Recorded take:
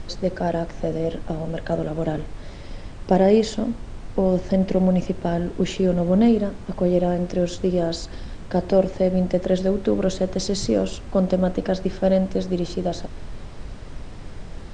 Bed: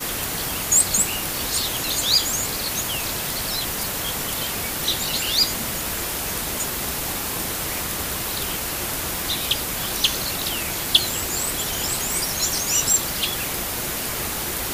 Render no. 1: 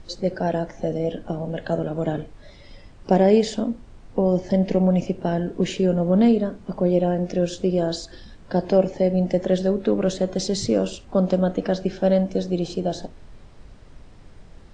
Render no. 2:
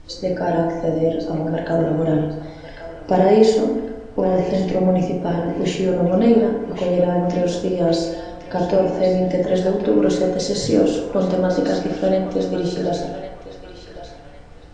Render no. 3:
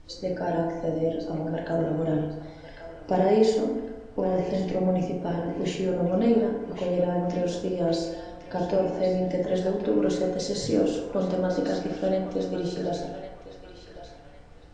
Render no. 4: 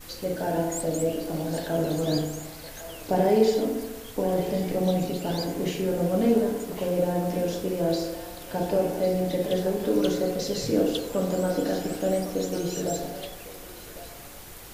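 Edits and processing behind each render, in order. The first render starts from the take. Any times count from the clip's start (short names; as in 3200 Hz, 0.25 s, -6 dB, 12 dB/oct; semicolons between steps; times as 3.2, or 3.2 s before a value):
noise print and reduce 10 dB
narrowing echo 1.105 s, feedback 42%, band-pass 2100 Hz, level -7 dB; FDN reverb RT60 1.3 s, low-frequency decay 0.75×, high-frequency decay 0.4×, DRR -2 dB
gain -7.5 dB
add bed -18.5 dB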